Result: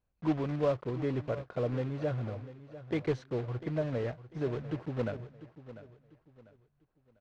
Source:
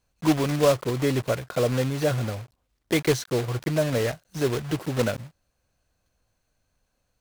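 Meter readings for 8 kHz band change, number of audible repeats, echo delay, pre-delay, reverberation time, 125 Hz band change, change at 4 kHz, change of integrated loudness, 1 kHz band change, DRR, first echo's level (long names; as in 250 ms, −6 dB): below −25 dB, 3, 696 ms, no reverb audible, no reverb audible, −8.0 dB, −19.0 dB, −9.0 dB, −10.5 dB, no reverb audible, −15.0 dB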